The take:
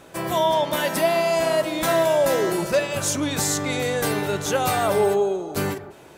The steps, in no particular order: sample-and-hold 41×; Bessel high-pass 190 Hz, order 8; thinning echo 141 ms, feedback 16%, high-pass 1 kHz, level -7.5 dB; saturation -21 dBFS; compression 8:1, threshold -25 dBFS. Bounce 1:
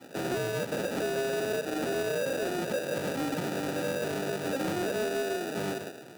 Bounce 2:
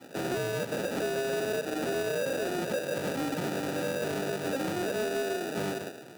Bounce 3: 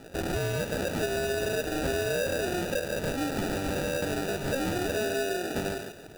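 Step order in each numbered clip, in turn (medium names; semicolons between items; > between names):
compression > thinning echo > sample-and-hold > Bessel high-pass > saturation; thinning echo > sample-and-hold > compression > Bessel high-pass > saturation; Bessel high-pass > sample-and-hold > compression > saturation > thinning echo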